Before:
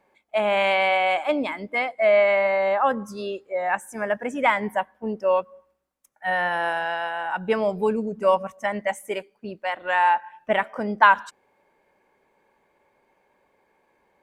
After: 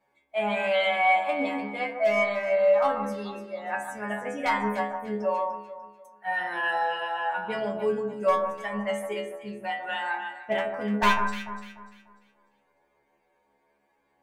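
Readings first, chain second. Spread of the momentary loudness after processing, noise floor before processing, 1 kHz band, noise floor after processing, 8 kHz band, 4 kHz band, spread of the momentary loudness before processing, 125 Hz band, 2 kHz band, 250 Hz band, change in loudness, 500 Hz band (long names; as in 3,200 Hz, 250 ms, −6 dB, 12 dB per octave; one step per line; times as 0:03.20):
13 LU, −68 dBFS, −4.5 dB, −71 dBFS, −2.0 dB, −2.5 dB, 12 LU, can't be measured, −4.0 dB, −2.0 dB, −4.0 dB, −4.0 dB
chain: wavefolder on the positive side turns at −12.5 dBFS
stiff-string resonator 68 Hz, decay 0.63 s, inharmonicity 0.002
delay that swaps between a low-pass and a high-pass 148 ms, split 1,600 Hz, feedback 56%, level −5.5 dB
level +6 dB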